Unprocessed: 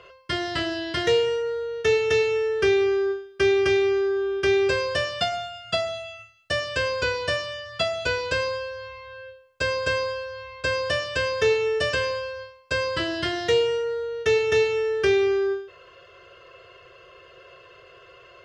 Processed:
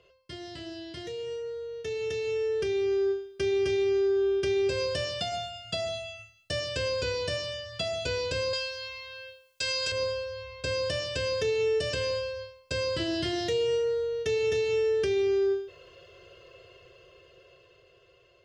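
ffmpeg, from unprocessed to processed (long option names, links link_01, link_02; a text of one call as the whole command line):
ffmpeg -i in.wav -filter_complex "[0:a]asettb=1/sr,asplit=3[link_01][link_02][link_03];[link_01]atrim=end=8.534[link_04];[link_02]atrim=start=8.53:end=9.92,asetpts=PTS-STARTPTS,afade=type=in:duration=0.004:curve=qsin,afade=type=out:start_time=1.386:duration=0.004:curve=qsin,tiltshelf=frequency=970:gain=-10[link_05];[link_03]atrim=start=9.916[link_06];[link_04][link_05]acrossfade=duration=0.004:curve1=hsin:curve2=qsin[link_07];[link_07][link_06]acrossfade=duration=0.004:curve1=qsin:curve2=hsin,equalizer=frequency=1300:width=0.77:gain=-13,alimiter=limit=-23.5dB:level=0:latency=1:release=124,dynaudnorm=framelen=510:gausssize=9:maxgain=11dB,volume=-8dB" out.wav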